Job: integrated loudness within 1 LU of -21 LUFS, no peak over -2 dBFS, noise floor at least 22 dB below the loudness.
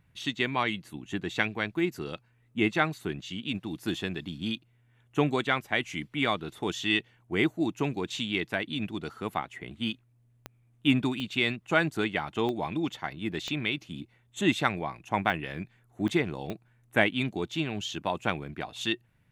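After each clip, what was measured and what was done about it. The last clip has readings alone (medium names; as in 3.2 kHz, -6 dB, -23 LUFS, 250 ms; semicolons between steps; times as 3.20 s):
clicks found 7; loudness -30.5 LUFS; peak level -7.5 dBFS; loudness target -21.0 LUFS
-> de-click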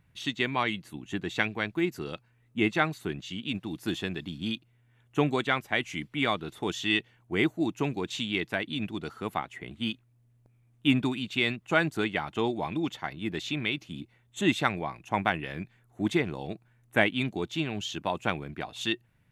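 clicks found 0; loudness -30.5 LUFS; peak level -7.5 dBFS; loudness target -21.0 LUFS
-> trim +9.5 dB; peak limiter -2 dBFS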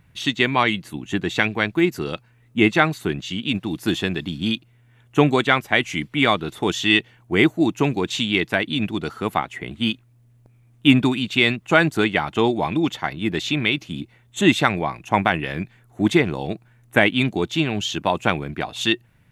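loudness -21.0 LUFS; peak level -2.0 dBFS; noise floor -56 dBFS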